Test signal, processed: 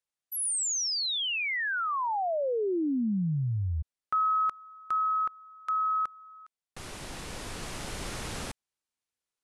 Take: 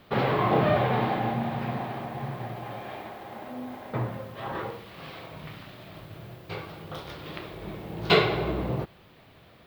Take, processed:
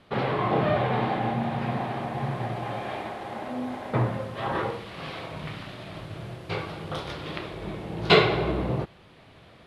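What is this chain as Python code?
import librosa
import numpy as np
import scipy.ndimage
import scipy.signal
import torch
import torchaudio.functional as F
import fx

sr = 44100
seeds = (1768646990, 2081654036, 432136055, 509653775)

y = scipy.signal.sosfilt(scipy.signal.butter(6, 11000.0, 'lowpass', fs=sr, output='sos'), x)
y = fx.rider(y, sr, range_db=4, speed_s=2.0)
y = y * 10.0 ** (1.5 / 20.0)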